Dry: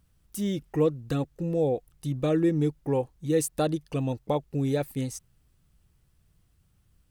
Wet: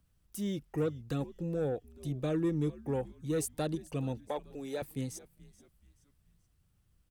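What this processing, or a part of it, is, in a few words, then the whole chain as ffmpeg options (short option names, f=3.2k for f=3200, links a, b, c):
one-band saturation: -filter_complex "[0:a]asettb=1/sr,asplit=3[a][b][c];[a]atrim=end=4.174[d];[b]atrim=start=4.17:end=4.82,asetpts=PTS-STARTPTS,afade=t=in:d=0.004:c=qsin,afade=t=out:st=0.646:d=0.004:c=qsin,highpass=410[e];[c]atrim=start=4.816[f];[d][e]acrossfade=d=0.004:c1=hsin:c2=qsin[g];[g][f]acrossfade=d=0.004:c1=qsin:c2=hsin,asplit=4[h][i][j][k];[i]adelay=429,afreqshift=-100,volume=-20dB[l];[j]adelay=858,afreqshift=-200,volume=-28.2dB[m];[k]adelay=1287,afreqshift=-300,volume=-36.4dB[n];[h][l][m][n]amix=inputs=4:normalize=0,acrossover=split=270|2700[o][p][q];[p]asoftclip=type=tanh:threshold=-22dB[r];[o][r][q]amix=inputs=3:normalize=0,volume=-6dB"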